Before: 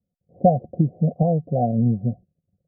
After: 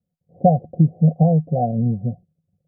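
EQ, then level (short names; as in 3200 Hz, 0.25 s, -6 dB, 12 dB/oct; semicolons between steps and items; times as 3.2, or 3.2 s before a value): thirty-one-band EQ 100 Hz +4 dB, 160 Hz +9 dB, 500 Hz +3 dB, 800 Hz +7 dB; -2.5 dB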